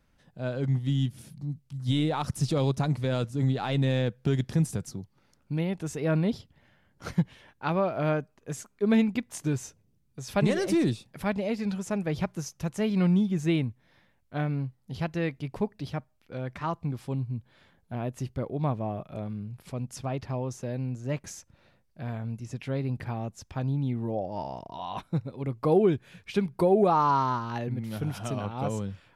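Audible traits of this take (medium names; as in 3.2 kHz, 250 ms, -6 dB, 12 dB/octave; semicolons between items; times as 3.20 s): noise floor -68 dBFS; spectral tilt -6.5 dB/octave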